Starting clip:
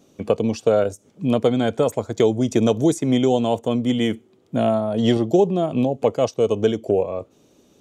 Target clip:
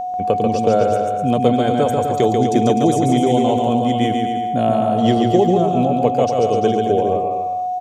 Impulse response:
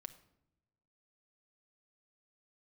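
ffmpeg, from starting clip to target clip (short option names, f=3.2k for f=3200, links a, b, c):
-af "aeval=exprs='val(0)+0.0794*sin(2*PI*730*n/s)':c=same,lowshelf=f=85:g=7,aecho=1:1:140|252|341.6|413.3|470.6:0.631|0.398|0.251|0.158|0.1"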